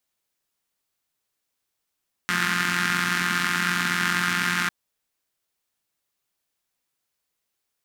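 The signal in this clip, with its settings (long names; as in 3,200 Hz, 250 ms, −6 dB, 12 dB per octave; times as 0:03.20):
pulse-train model of a four-cylinder engine, steady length 2.40 s, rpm 5,300, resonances 210/1,500 Hz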